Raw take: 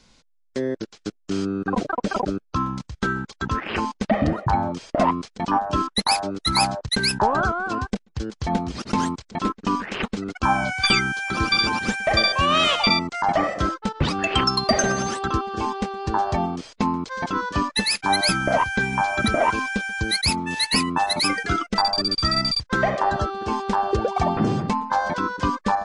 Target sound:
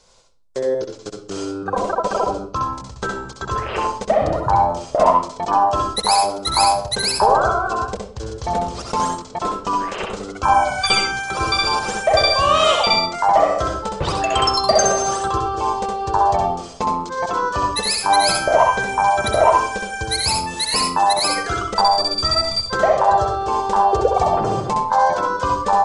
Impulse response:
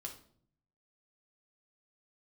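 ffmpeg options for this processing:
-filter_complex "[0:a]equalizer=frequency=250:width_type=o:width=1:gain=-12,equalizer=frequency=500:width_type=o:width=1:gain=10,equalizer=frequency=1000:width_type=o:width=1:gain=5,equalizer=frequency=2000:width_type=o:width=1:gain=-4,equalizer=frequency=8000:width_type=o:width=1:gain=8,asplit=2[link_01][link_02];[1:a]atrim=start_sample=2205,adelay=65[link_03];[link_02][link_03]afir=irnorm=-1:irlink=0,volume=1dB[link_04];[link_01][link_04]amix=inputs=2:normalize=0,volume=-1.5dB"

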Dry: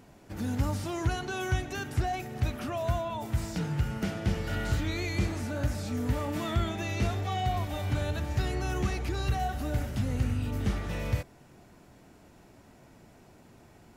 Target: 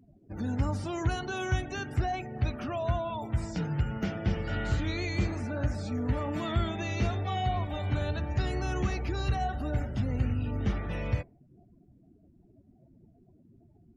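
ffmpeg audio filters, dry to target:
ffmpeg -i in.wav -af "afftdn=noise_reduction=32:noise_floor=-47" out.wav

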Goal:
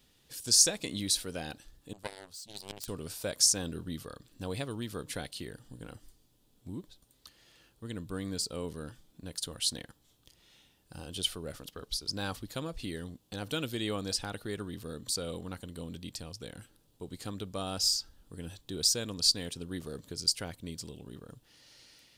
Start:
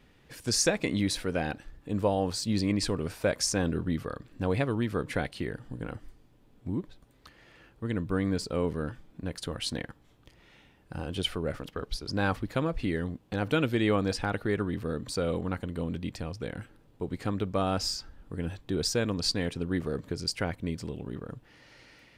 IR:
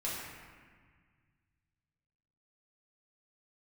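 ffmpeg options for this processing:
-filter_complex "[0:a]asettb=1/sr,asplit=3[link_01][link_02][link_03];[link_01]atrim=end=1.934[link_04];[link_02]atrim=start=1.93:end=2.88,asetpts=PTS-STARTPTS,afade=type=in:duration=0.004:curve=qsin,afade=type=out:start_time=0.946:duration=0.004:curve=qsin,aeval=exprs='0.2*(cos(1*acos(clip(val(0)/0.2,-1,1)))-cos(1*PI/2))+0.0794*(cos(3*acos(clip(val(0)/0.2,-1,1)))-cos(3*PI/2))':channel_layout=same[link_05];[link_03]atrim=start=2.876[link_06];[link_04][link_05]acrossfade=duration=0.004:curve1=hsin:curve2=qsin[link_07];[link_07][link_06]acrossfade=duration=0.004:curve1=qsin:curve2=hsin,aexciter=amount=4.9:drive=4.7:freq=3100,volume=-9dB"

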